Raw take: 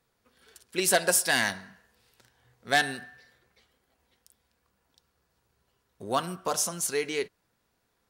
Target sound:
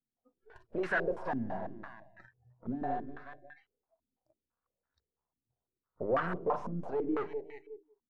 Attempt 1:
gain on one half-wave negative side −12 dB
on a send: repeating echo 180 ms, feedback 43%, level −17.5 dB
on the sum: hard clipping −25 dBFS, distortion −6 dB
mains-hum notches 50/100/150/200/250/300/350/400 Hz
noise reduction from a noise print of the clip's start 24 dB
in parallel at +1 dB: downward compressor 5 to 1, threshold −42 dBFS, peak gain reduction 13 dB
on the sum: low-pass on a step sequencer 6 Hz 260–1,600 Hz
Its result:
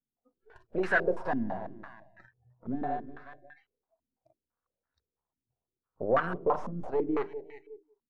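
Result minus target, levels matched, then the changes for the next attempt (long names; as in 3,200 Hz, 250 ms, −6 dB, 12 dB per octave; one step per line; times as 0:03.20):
hard clipping: distortion −6 dB
change: hard clipping −35.5 dBFS, distortion −1 dB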